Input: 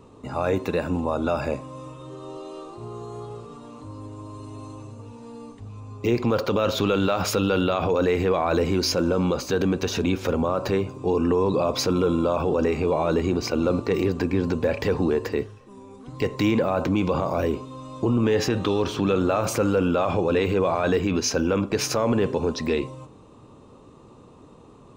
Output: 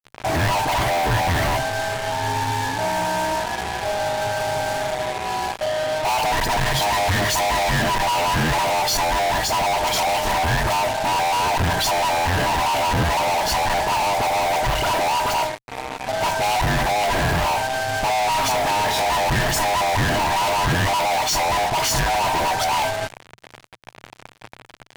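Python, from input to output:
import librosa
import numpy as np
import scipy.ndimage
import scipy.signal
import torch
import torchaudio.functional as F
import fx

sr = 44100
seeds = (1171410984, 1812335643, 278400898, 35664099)

y = fx.band_swap(x, sr, width_hz=500)
y = fx.dispersion(y, sr, late='highs', ms=60.0, hz=1900.0)
y = fx.fuzz(y, sr, gain_db=45.0, gate_db=-42.0)
y = fx.peak_eq(y, sr, hz=120.0, db=6.5, octaves=0.51)
y = y * 10.0 ** (-6.0 / 20.0)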